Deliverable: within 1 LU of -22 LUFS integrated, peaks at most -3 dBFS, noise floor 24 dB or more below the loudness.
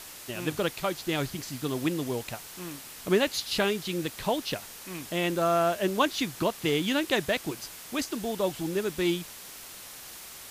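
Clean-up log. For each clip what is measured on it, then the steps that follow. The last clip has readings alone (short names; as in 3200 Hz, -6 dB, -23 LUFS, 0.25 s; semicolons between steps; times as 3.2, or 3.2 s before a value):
noise floor -45 dBFS; noise floor target -54 dBFS; loudness -29.5 LUFS; peak -11.0 dBFS; loudness target -22.0 LUFS
-> noise print and reduce 9 dB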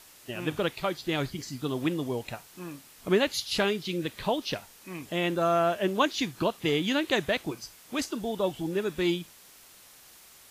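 noise floor -54 dBFS; loudness -29.0 LUFS; peak -11.0 dBFS; loudness target -22.0 LUFS
-> gain +7 dB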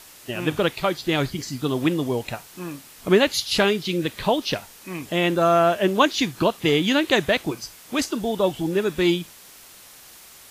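loudness -22.0 LUFS; peak -4.0 dBFS; noise floor -47 dBFS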